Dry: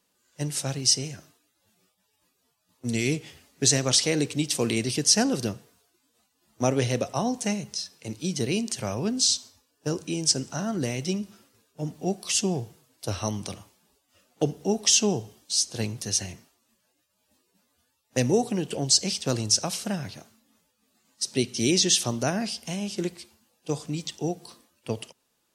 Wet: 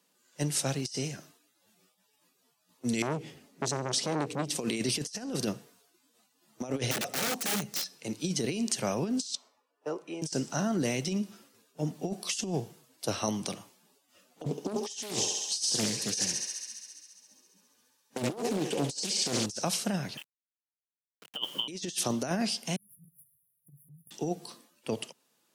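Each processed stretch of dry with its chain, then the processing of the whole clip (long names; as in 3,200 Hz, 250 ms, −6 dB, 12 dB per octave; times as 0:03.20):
0:03.02–0:04.56: tilt shelving filter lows +6 dB, about 740 Hz + downward compressor 1.5 to 1, threshold −30 dBFS + saturating transformer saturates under 1,100 Hz
0:06.91–0:07.95: wrap-around overflow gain 26.5 dB + notch filter 1,000 Hz, Q 7.3
0:09.35–0:10.22: three-way crossover with the lows and the highs turned down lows −20 dB, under 420 Hz, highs −20 dB, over 2,100 Hz + notch filter 1,600 Hz, Q 6.2
0:14.44–0:19.46: notch comb filter 680 Hz + feedback echo with a high-pass in the loop 68 ms, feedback 80%, high-pass 510 Hz, level −5.5 dB + highs frequency-modulated by the lows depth 0.8 ms
0:20.17–0:21.68: voice inversion scrambler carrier 3,300 Hz + bit-depth reduction 8 bits, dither none
0:22.76–0:24.11: lower of the sound and its delayed copy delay 2.6 ms + linear-phase brick-wall band-stop 180–9,600 Hz + downward compressor, threshold −49 dBFS
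whole clip: high-pass filter 140 Hz 24 dB per octave; compressor whose output falls as the input rises −28 dBFS, ratio −0.5; level −2 dB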